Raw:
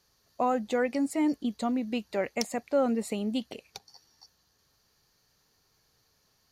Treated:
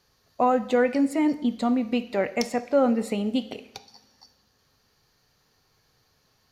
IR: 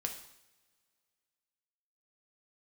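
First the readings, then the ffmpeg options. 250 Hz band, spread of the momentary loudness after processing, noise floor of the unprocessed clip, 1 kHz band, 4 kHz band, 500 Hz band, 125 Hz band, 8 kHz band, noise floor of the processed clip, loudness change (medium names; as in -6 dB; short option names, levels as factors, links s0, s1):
+5.5 dB, 6 LU, -71 dBFS, +5.5 dB, +3.0 dB, +5.5 dB, +5.0 dB, -0.5 dB, -67 dBFS, +5.5 dB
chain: -filter_complex "[0:a]asplit=2[s0][s1];[1:a]atrim=start_sample=2205,lowpass=5200[s2];[s1][s2]afir=irnorm=-1:irlink=0,volume=0.841[s3];[s0][s3]amix=inputs=2:normalize=0"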